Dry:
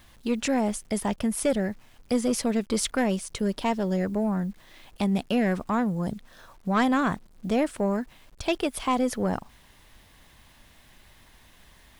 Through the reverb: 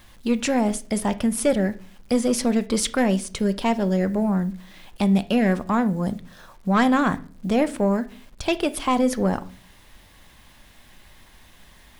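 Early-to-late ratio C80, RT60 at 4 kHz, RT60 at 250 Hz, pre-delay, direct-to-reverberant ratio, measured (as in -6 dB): 23.5 dB, 0.35 s, 0.65 s, 4 ms, 12.0 dB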